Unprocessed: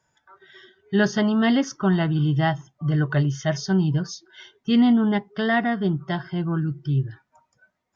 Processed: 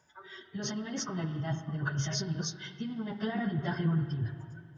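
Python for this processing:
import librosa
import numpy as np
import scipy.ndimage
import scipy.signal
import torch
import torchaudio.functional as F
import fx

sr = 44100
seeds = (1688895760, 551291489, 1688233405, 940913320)

y = fx.over_compress(x, sr, threshold_db=-28.0, ratio=-1.0)
y = fx.rev_spring(y, sr, rt60_s=3.6, pass_ms=(43, 55), chirp_ms=45, drr_db=8.5)
y = fx.stretch_vocoder_free(y, sr, factor=0.6)
y = y * librosa.db_to_amplitude(-2.5)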